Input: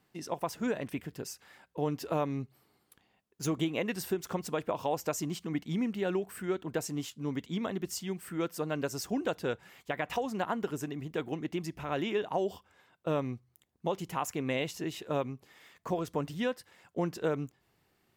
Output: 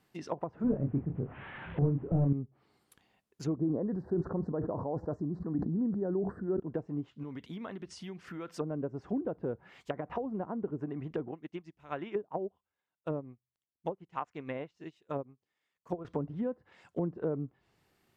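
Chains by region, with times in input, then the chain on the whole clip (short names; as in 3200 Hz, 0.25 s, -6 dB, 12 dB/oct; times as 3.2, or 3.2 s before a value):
0.64–2.33 delta modulation 16 kbps, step -43 dBFS + bell 120 Hz +10 dB 1.6 oct + doubler 29 ms -5 dB
3.56–6.6 elliptic band-stop 1800–4100 Hz + sustainer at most 29 dB/s
7.23–8.48 careless resampling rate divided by 3×, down filtered, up hold + compressor 4:1, threshold -39 dBFS
11.31–16.05 median filter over 3 samples + upward expander 2.5:1, over -44 dBFS
whole clip: treble ducked by the level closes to 450 Hz, closed at -30.5 dBFS; dynamic EQ 1300 Hz, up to +5 dB, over -51 dBFS, Q 0.96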